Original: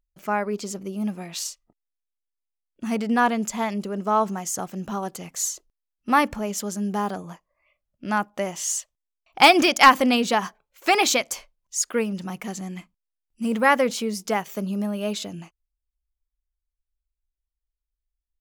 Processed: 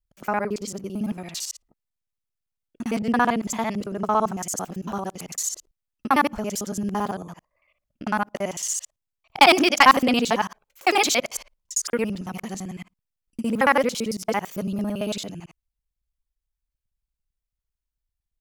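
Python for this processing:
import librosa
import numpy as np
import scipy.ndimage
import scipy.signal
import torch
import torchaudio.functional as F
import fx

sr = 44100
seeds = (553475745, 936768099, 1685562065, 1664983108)

y = fx.local_reverse(x, sr, ms=56.0)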